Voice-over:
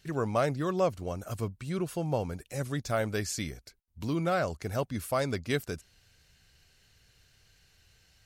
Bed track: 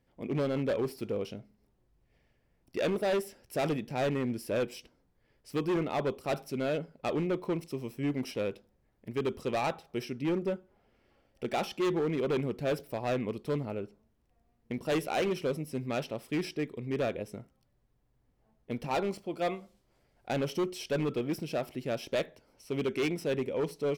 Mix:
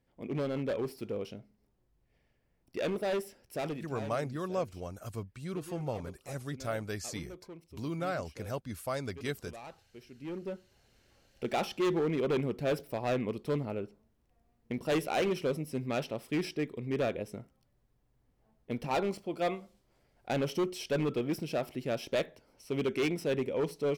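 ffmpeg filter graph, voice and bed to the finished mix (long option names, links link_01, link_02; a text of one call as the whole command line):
ffmpeg -i stem1.wav -i stem2.wav -filter_complex "[0:a]adelay=3750,volume=-6dB[link_01];[1:a]volume=13.5dB,afade=type=out:start_time=3.42:duration=0.73:silence=0.211349,afade=type=in:start_time=10.06:duration=1.21:silence=0.149624[link_02];[link_01][link_02]amix=inputs=2:normalize=0" out.wav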